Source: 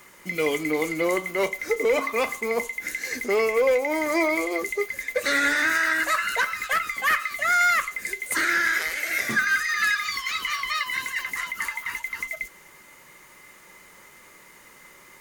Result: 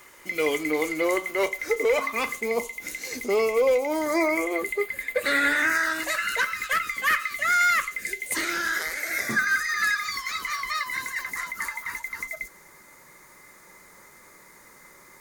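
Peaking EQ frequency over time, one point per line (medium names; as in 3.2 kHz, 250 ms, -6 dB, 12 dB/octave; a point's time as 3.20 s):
peaking EQ -14.5 dB 0.38 oct
1.82 s 180 Hz
2.59 s 1.7 kHz
3.82 s 1.7 kHz
4.66 s 5.9 kHz
5.53 s 5.9 kHz
6.29 s 780 Hz
7.88 s 780 Hz
8.92 s 2.9 kHz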